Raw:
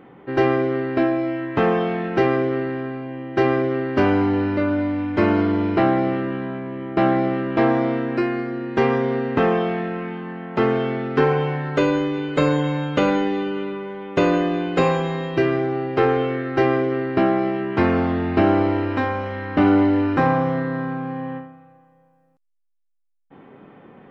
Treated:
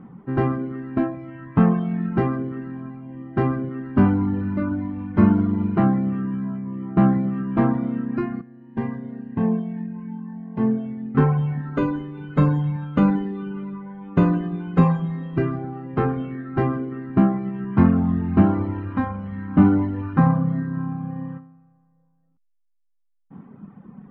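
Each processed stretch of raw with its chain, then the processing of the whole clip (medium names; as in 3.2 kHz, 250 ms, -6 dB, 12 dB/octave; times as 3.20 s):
8.41–11.15 s: Butterworth band-stop 1.3 kHz, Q 4.5 + feedback comb 110 Hz, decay 0.41 s, mix 70%
whole clip: reverb removal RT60 1.2 s; FFT filter 130 Hz 0 dB, 200 Hz +7 dB, 320 Hz -10 dB, 560 Hz -15 dB, 1.1 kHz -7 dB, 2.1 kHz -17 dB, 6.4 kHz -26 dB; trim +6.5 dB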